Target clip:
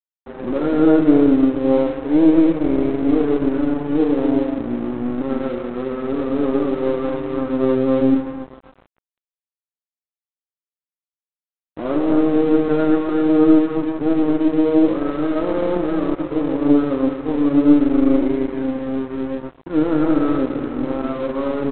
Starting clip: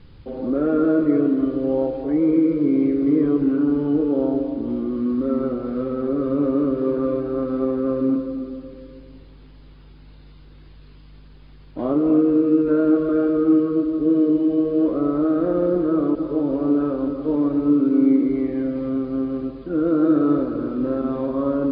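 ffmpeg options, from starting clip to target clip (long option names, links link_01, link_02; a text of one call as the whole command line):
ffmpeg -i in.wav -filter_complex "[0:a]aeval=exprs='0.447*(cos(1*acos(clip(val(0)/0.447,-1,1)))-cos(1*PI/2))+0.0398*(cos(4*acos(clip(val(0)/0.447,-1,1)))-cos(4*PI/2))':channel_layout=same,asplit=2[link_01][link_02];[link_02]adelay=110,highpass=300,lowpass=3400,asoftclip=type=hard:threshold=-16.5dB,volume=-10dB[link_03];[link_01][link_03]amix=inputs=2:normalize=0,flanger=delay=4.2:depth=3.7:regen=55:speed=0.32:shape=triangular,aresample=8000,aeval=exprs='sgn(val(0))*max(abs(val(0))-0.0126,0)':channel_layout=same,aresample=44100,volume=7dB" out.wav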